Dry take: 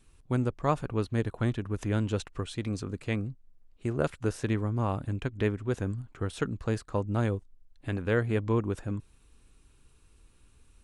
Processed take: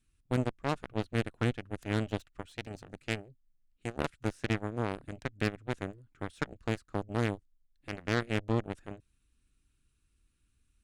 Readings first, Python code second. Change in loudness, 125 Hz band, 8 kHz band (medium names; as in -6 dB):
-4.0 dB, -6.0 dB, -4.0 dB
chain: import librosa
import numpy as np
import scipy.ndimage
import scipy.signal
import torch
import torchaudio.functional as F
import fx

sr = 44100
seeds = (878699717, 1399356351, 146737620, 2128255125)

y = fx.band_shelf(x, sr, hz=650.0, db=-9.0, octaves=1.7)
y = fx.cheby_harmonics(y, sr, harmonics=(7,), levels_db=(-15,), full_scale_db=-14.5)